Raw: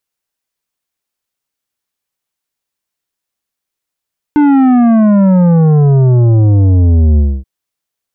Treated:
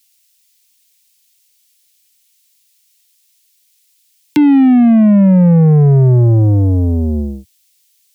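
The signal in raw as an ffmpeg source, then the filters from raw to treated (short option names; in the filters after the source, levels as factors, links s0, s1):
-f lavfi -i "aevalsrc='0.501*clip((3.08-t)/0.26,0,1)*tanh(3.16*sin(2*PI*300*3.08/log(65/300)*(exp(log(65/300)*t/3.08)-1)))/tanh(3.16)':d=3.08:s=44100"
-filter_complex "[0:a]highpass=f=100:w=0.5412,highpass=f=100:w=1.3066,acrossover=split=130|420|540[s0][s1][s2][s3];[s3]acompressor=threshold=0.0251:ratio=6[s4];[s0][s1][s2][s4]amix=inputs=4:normalize=0,aexciter=amount=10.3:drive=4:freq=2000"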